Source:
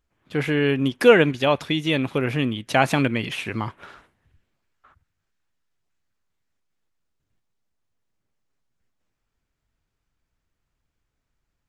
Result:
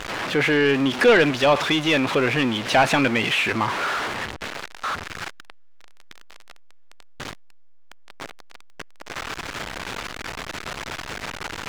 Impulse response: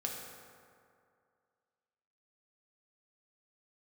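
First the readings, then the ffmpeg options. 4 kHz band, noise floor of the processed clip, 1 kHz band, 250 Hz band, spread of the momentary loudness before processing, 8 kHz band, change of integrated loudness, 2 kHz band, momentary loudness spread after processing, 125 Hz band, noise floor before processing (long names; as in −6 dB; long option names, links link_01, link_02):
+5.5 dB, −42 dBFS, +4.5 dB, +0.5 dB, 13 LU, +8.0 dB, −0.5 dB, +5.0 dB, 19 LU, −3.0 dB, −79 dBFS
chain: -filter_complex "[0:a]aeval=exprs='val(0)+0.5*0.0501*sgn(val(0))':channel_layout=same,highshelf=frequency=10000:gain=-10.5,asplit=2[link_01][link_02];[link_02]highpass=frequency=720:poles=1,volume=19dB,asoftclip=type=tanh:threshold=-2dB[link_03];[link_01][link_03]amix=inputs=2:normalize=0,lowpass=frequency=3000:poles=1,volume=-6dB,volume=-4.5dB"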